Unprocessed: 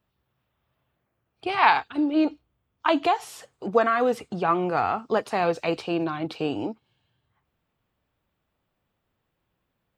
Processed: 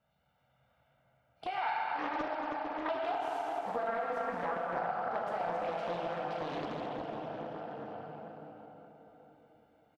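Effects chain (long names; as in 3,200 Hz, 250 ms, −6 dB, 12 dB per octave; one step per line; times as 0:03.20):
high-pass filter 250 Hz 6 dB per octave
high-shelf EQ 3,100 Hz −10.5 dB
comb filter 1.4 ms, depth 83%
dense smooth reverb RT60 4.6 s, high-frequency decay 0.65×, DRR −4.5 dB
downward compressor 3 to 1, threshold −39 dBFS, peak gain reduction 20.5 dB
highs frequency-modulated by the lows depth 0.54 ms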